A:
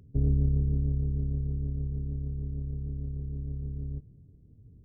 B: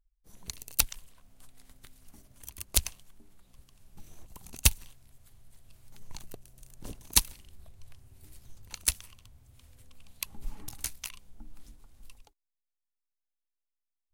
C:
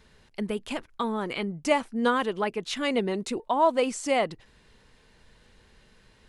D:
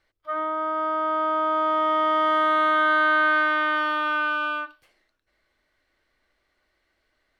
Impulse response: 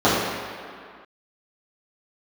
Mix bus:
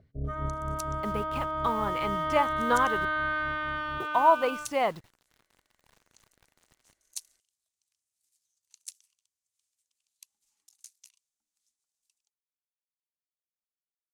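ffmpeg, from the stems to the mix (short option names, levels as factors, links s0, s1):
-filter_complex "[0:a]tremolo=f=4.3:d=0.8,lowpass=f=640:t=q:w=8,volume=0.422[s0];[1:a]bandpass=f=6800:t=q:w=1.8:csg=0,volume=0.282[s1];[2:a]equalizer=f=125:t=o:w=1:g=9,equalizer=f=250:t=o:w=1:g=-4,equalizer=f=1000:t=o:w=1:g=8,equalizer=f=8000:t=o:w=1:g=-9,acrusher=bits=7:mix=0:aa=0.000001,aeval=exprs='sgn(val(0))*max(abs(val(0))-0.00376,0)':c=same,adelay=650,volume=0.596,asplit=3[s2][s3][s4];[s2]atrim=end=3.05,asetpts=PTS-STARTPTS,afade=t=out:st=3.046:d=0.004:c=hsin[s5];[s3]atrim=start=3.05:end=4,asetpts=PTS-STARTPTS,volume=0[s6];[s4]atrim=start=4,asetpts=PTS-STARTPTS,afade=t=in:d=0.004:c=hsin[s7];[s5][s6][s7]concat=n=3:v=0:a=1[s8];[3:a]volume=0.335[s9];[s0][s1][s8][s9]amix=inputs=4:normalize=0"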